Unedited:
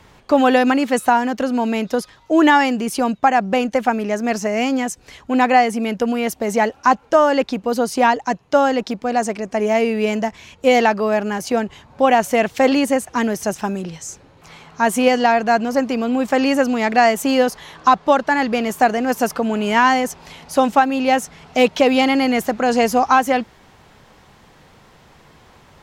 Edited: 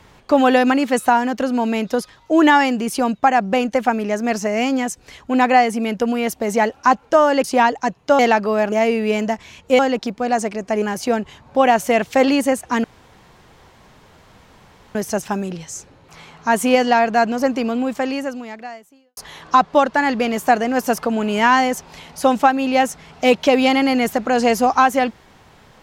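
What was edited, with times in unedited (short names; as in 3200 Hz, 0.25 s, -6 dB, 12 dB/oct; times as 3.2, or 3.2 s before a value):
7.44–7.88 cut
8.63–9.66 swap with 10.73–11.26
13.28 insert room tone 2.11 s
15.99–17.5 fade out quadratic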